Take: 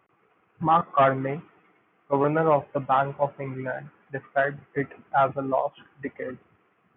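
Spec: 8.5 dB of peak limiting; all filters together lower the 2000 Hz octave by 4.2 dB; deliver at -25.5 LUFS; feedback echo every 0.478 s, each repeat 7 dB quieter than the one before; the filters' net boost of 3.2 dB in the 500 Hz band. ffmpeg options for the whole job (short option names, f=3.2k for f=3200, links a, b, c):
-af "equalizer=f=500:t=o:g=4.5,equalizer=f=2k:t=o:g=-6.5,alimiter=limit=-15.5dB:level=0:latency=1,aecho=1:1:478|956|1434|1912|2390:0.447|0.201|0.0905|0.0407|0.0183,volume=2.5dB"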